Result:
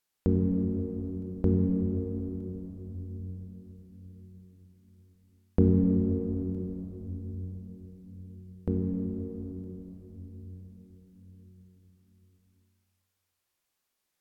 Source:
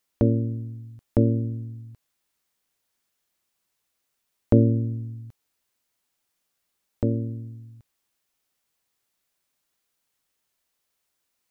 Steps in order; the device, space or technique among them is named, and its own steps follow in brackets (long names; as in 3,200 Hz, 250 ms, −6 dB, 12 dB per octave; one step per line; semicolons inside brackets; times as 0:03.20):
slowed and reverbed (speed change −19%; convolution reverb RT60 4.6 s, pre-delay 16 ms, DRR 1.5 dB)
level −5.5 dB